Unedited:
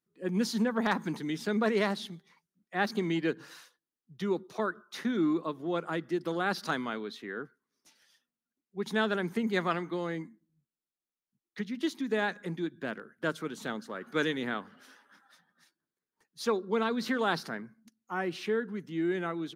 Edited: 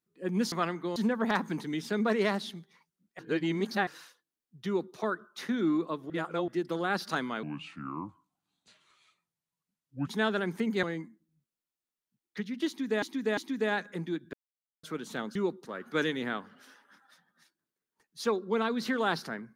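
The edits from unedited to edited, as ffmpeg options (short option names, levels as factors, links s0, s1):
-filter_complex "[0:a]asplit=16[s0][s1][s2][s3][s4][s5][s6][s7][s8][s9][s10][s11][s12][s13][s14][s15];[s0]atrim=end=0.522[s16];[s1]atrim=start=9.598:end=10.042[s17];[s2]atrim=start=0.518:end=2.752[s18];[s3]atrim=start=2.748:end=3.432,asetpts=PTS-STARTPTS,areverse[s19];[s4]atrim=start=3.428:end=5.662[s20];[s5]atrim=start=5.658:end=6.042,asetpts=PTS-STARTPTS,areverse[s21];[s6]atrim=start=6.038:end=6.994[s22];[s7]atrim=start=6.99:end=8.84,asetpts=PTS-STARTPTS,asetrate=30870,aresample=44100,atrim=end_sample=116550,asetpts=PTS-STARTPTS[s23];[s8]atrim=start=8.836:end=9.602[s24];[s9]atrim=start=10.038:end=12.232[s25];[s10]atrim=start=11.878:end=12.232[s26];[s11]atrim=start=11.878:end=12.84,asetpts=PTS-STARTPTS,afade=t=out:st=0.958:d=0.004:c=hsin[s27];[s12]atrim=start=12.84:end=13.34,asetpts=PTS-STARTPTS,volume=0[s28];[s13]atrim=start=13.34:end=13.862,asetpts=PTS-STARTPTS,afade=t=in:d=0.004:c=hsin[s29];[s14]atrim=start=4.218:end=4.522[s30];[s15]atrim=start=13.858[s31];[s16][s17]acrossfade=d=0.004:c1=hsin:c2=hsin[s32];[s32][s18]acrossfade=d=0.004:c1=hsin:c2=hsin[s33];[s33][s19]acrossfade=d=0.004:c1=hsin:c2=hsin[s34];[s34][s20]acrossfade=d=0.004:c1=hsin:c2=hsin[s35];[s35][s21]acrossfade=d=0.004:c1=hsin:c2=hsin[s36];[s36][s22]acrossfade=d=0.004:c1=hsin:c2=hsin[s37];[s37][s23]acrossfade=d=0.004:c1=hsin:c2=hsin[s38];[s38][s24]acrossfade=d=0.004:c1=hsin:c2=hsin[s39];[s39][s25]acrossfade=d=0.004:c1=hsin:c2=hsin[s40];[s40][s26]acrossfade=d=0.004:c1=hsin:c2=hsin[s41];[s27][s28][s29]concat=n=3:v=0:a=1[s42];[s41][s42]acrossfade=d=0.004:c1=hsin:c2=hsin[s43];[s43][s30]acrossfade=d=0.004:c1=hsin:c2=hsin[s44];[s44][s31]acrossfade=d=0.004:c1=hsin:c2=hsin"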